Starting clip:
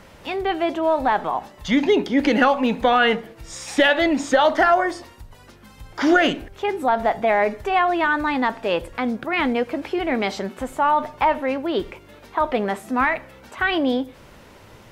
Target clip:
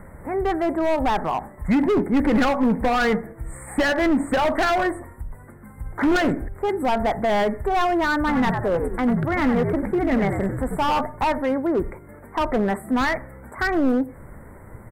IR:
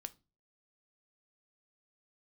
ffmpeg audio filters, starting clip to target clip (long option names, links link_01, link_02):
-filter_complex "[0:a]asuperstop=centerf=4200:order=20:qfactor=0.74,asplit=3[link_01][link_02][link_03];[link_01]afade=type=out:start_time=8.27:duration=0.02[link_04];[link_02]asplit=5[link_05][link_06][link_07][link_08][link_09];[link_06]adelay=94,afreqshift=-70,volume=-7dB[link_10];[link_07]adelay=188,afreqshift=-140,volume=-15.6dB[link_11];[link_08]adelay=282,afreqshift=-210,volume=-24.3dB[link_12];[link_09]adelay=376,afreqshift=-280,volume=-32.9dB[link_13];[link_05][link_10][link_11][link_12][link_13]amix=inputs=5:normalize=0,afade=type=in:start_time=8.27:duration=0.02,afade=type=out:start_time=11:duration=0.02[link_14];[link_03]afade=type=in:start_time=11:duration=0.02[link_15];[link_04][link_14][link_15]amix=inputs=3:normalize=0,asoftclip=type=hard:threshold=-18.5dB,lowshelf=frequency=180:gain=11.5,bandreject=frequency=50:width_type=h:width=6,bandreject=frequency=100:width_type=h:width=6"